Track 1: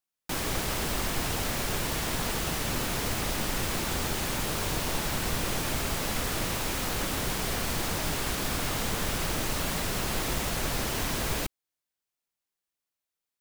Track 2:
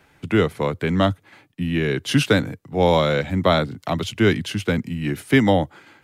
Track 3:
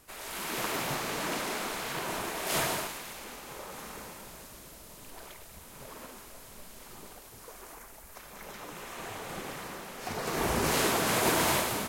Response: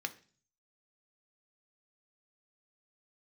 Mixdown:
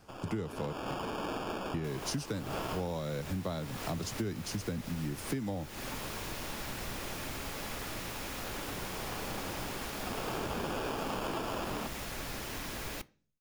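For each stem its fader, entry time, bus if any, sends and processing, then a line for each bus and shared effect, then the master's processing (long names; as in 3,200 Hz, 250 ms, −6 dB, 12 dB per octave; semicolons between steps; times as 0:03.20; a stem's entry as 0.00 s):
−12.0 dB, 1.55 s, send −5.5 dB, high-shelf EQ 6,600 Hz +10.5 dB
−3.0 dB, 0.00 s, muted 0:00.73–0:01.74, no send, drawn EQ curve 150 Hz 0 dB, 3,200 Hz −11 dB, 4,900 Hz +10 dB
−4.0 dB, 0.00 s, send −6 dB, wavefolder on the positive side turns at −24 dBFS; decimation without filtering 22×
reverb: on, RT60 0.40 s, pre-delay 3 ms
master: high-shelf EQ 5,400 Hz −10.5 dB; downward compressor 12 to 1, threshold −32 dBFS, peak gain reduction 16.5 dB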